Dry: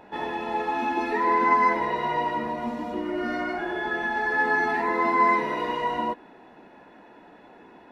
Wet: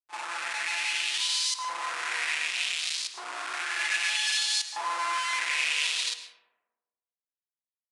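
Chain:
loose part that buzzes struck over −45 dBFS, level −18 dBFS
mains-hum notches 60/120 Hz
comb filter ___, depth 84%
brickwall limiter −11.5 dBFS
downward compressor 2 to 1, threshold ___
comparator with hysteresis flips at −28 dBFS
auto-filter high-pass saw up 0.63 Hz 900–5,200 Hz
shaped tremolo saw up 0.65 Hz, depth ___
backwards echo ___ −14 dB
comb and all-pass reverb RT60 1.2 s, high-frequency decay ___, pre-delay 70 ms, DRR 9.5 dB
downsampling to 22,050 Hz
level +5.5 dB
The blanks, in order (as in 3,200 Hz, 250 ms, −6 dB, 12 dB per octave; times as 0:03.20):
5.8 ms, −26 dBFS, 90%, 35 ms, 0.35×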